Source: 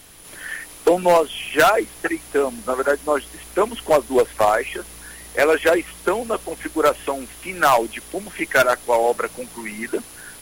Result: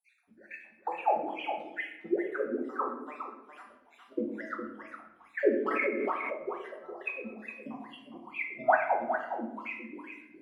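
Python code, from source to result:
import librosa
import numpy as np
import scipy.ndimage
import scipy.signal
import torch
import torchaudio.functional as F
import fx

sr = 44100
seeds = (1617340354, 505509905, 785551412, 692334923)

y = fx.spec_dropout(x, sr, seeds[0], share_pct=67)
y = fx.rider(y, sr, range_db=4, speed_s=2.0)
y = fx.wah_lfo(y, sr, hz=2.3, low_hz=210.0, high_hz=2600.0, q=22.0)
y = y + 10.0 ** (-8.0 / 20.0) * np.pad(y, (int(411 * sr / 1000.0), 0))[:len(y)]
y = fx.room_shoebox(y, sr, seeds[1], volume_m3=220.0, walls='mixed', distance_m=1.0)
y = fx.pre_swell(y, sr, db_per_s=23.0, at=(5.66, 6.35))
y = F.gain(torch.from_numpy(y), 5.0).numpy()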